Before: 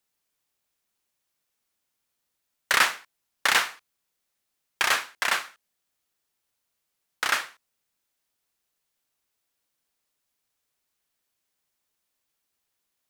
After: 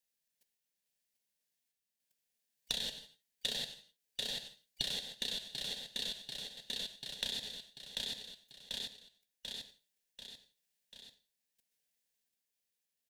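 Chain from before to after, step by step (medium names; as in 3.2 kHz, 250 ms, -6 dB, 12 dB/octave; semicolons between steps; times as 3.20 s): four frequency bands reordered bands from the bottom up 3412; static phaser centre 330 Hz, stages 6; level held to a coarse grid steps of 16 dB; formant shift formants -4 st; on a send: feedback delay 740 ms, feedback 52%, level -12 dB; on the sum: gated-style reverb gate 190 ms falling, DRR 10.5 dB; random-step tremolo; compression 10:1, threshold -47 dBFS, peak gain reduction 19 dB; trim +12 dB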